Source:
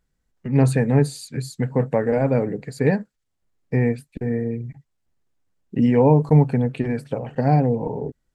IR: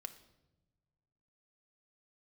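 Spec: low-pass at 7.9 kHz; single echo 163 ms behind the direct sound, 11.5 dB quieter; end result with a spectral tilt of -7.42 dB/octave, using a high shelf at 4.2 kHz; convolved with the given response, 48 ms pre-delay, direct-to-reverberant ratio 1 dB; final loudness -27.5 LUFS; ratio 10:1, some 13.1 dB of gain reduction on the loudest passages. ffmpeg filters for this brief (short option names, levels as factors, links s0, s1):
-filter_complex "[0:a]lowpass=7900,highshelf=f=4200:g=-3,acompressor=threshold=0.0708:ratio=10,aecho=1:1:163:0.266,asplit=2[s0][s1];[1:a]atrim=start_sample=2205,adelay=48[s2];[s1][s2]afir=irnorm=-1:irlink=0,volume=1.41[s3];[s0][s3]amix=inputs=2:normalize=0"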